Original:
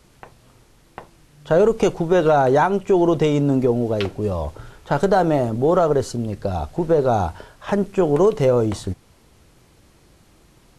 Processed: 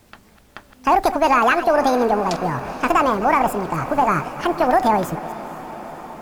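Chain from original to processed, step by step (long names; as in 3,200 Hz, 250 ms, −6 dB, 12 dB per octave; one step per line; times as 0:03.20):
delay that plays each chunk backwards 225 ms, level −13 dB
wrong playback speed 45 rpm record played at 78 rpm
feedback delay with all-pass diffusion 477 ms, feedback 74%, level −15.5 dB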